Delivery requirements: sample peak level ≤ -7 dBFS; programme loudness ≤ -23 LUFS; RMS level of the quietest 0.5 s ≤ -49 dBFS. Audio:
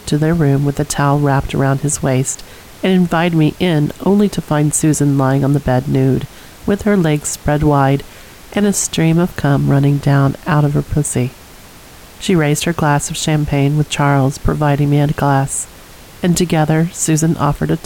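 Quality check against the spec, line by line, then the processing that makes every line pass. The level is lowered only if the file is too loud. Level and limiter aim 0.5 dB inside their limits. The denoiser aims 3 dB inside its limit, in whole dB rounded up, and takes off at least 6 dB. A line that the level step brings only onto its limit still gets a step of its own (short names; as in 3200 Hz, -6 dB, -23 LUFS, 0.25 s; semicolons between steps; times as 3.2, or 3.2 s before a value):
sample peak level -2.5 dBFS: fail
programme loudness -14.5 LUFS: fail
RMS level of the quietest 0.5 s -38 dBFS: fail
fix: denoiser 6 dB, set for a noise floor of -38 dBFS; gain -9 dB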